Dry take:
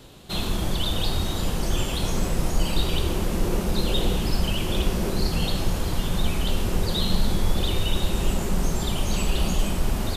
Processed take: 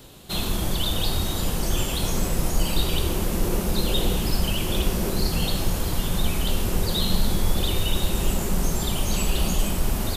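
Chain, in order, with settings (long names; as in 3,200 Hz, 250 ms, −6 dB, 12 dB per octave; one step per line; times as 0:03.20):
high-shelf EQ 9,600 Hz +11 dB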